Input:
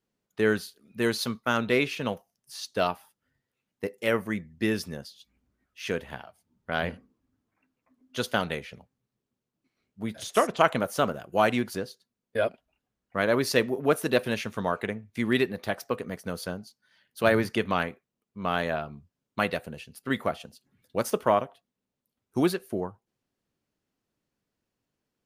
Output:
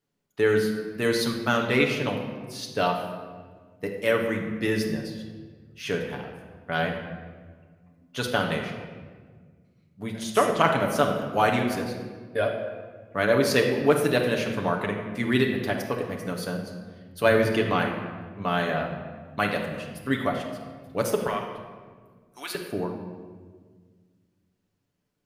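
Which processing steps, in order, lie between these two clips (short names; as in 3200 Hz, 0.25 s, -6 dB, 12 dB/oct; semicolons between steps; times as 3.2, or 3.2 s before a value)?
21.27–22.55 HPF 1400 Hz 12 dB/oct; on a send: reverb RT60 1.6 s, pre-delay 7 ms, DRR 1 dB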